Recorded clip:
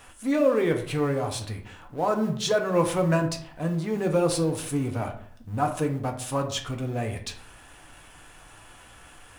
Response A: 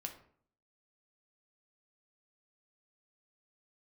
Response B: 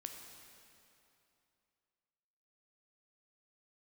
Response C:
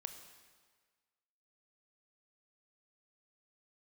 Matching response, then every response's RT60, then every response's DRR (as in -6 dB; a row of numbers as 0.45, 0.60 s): A; 0.55, 2.8, 1.6 s; 3.0, 3.0, 7.0 dB